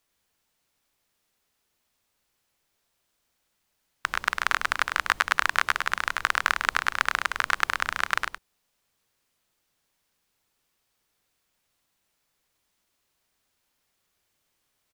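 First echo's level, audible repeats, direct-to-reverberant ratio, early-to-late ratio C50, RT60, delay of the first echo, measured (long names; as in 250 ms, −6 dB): −6.5 dB, 1, no reverb audible, no reverb audible, no reverb audible, 102 ms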